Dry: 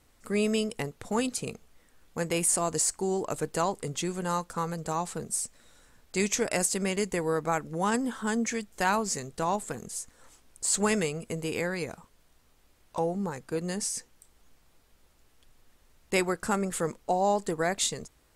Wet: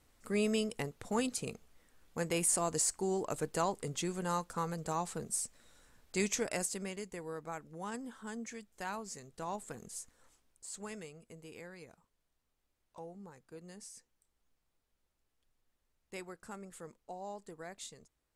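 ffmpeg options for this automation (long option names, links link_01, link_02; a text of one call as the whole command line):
ffmpeg -i in.wav -af "volume=1.5dB,afade=type=out:start_time=6.16:duration=0.86:silence=0.334965,afade=type=in:start_time=9.21:duration=0.78:silence=0.473151,afade=type=out:start_time=9.99:duration=0.67:silence=0.281838" out.wav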